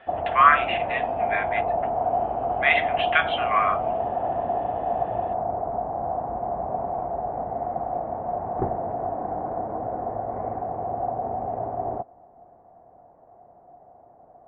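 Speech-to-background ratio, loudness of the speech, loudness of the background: 4.5 dB, −23.0 LKFS, −27.5 LKFS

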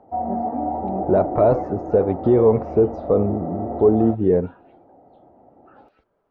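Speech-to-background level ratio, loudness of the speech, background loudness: 8.5 dB, −20.0 LKFS, −28.5 LKFS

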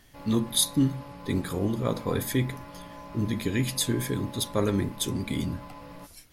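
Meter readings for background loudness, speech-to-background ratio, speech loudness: −45.0 LKFS, 16.5 dB, −28.5 LKFS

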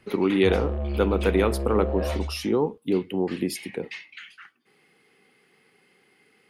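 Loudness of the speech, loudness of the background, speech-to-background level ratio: −25.5 LKFS, −30.0 LKFS, 4.5 dB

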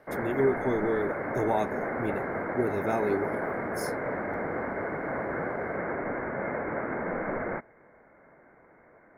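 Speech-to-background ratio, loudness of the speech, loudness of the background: 2.0 dB, −30.5 LKFS, −32.5 LKFS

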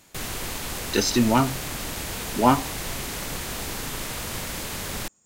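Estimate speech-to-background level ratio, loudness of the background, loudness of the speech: 7.5 dB, −30.5 LKFS, −23.0 LKFS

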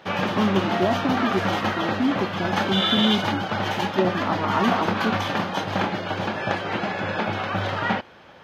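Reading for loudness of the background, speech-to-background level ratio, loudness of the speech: −24.5 LKFS, −2.0 dB, −26.5 LKFS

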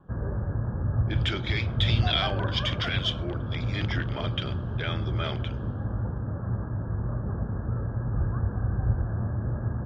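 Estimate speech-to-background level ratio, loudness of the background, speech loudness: −1.5 dB, −30.0 LKFS, −31.5 LKFS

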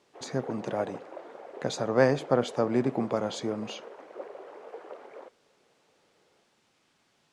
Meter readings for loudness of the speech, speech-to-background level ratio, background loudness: −29.5 LKFS, 15.5 dB, −45.0 LKFS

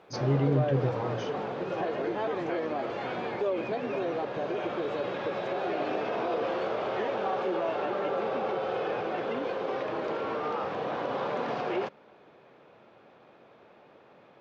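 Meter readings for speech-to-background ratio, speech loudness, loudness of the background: 2.5 dB, −29.5 LKFS, −32.0 LKFS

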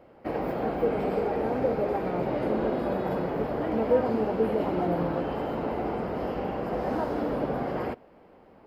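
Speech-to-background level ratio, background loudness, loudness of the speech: −0.5 dB, −30.5 LKFS, −31.0 LKFS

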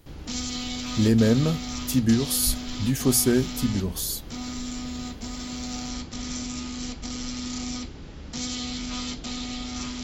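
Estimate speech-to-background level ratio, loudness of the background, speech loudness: 9.5 dB, −33.0 LKFS, −23.5 LKFS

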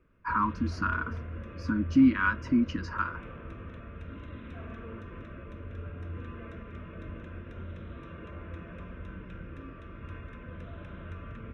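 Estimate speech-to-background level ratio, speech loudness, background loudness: 14.5 dB, −28.0 LKFS, −42.5 LKFS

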